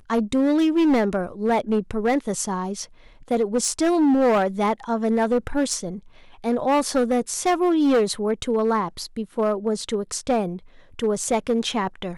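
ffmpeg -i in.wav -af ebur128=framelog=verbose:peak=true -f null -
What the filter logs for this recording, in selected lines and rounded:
Integrated loudness:
  I:         -22.4 LUFS
  Threshold: -32.7 LUFS
Loudness range:
  LRA:         3.1 LU
  Threshold: -42.7 LUFS
  LRA low:   -25.0 LUFS
  LRA high:  -21.9 LUFS
True peak:
  Peak:      -12.6 dBFS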